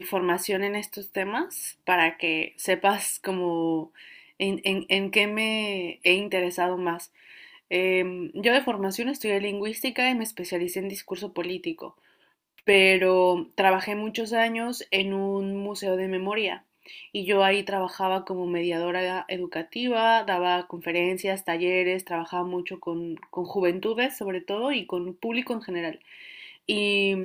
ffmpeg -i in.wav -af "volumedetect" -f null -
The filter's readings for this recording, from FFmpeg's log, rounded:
mean_volume: -26.5 dB
max_volume: -4.6 dB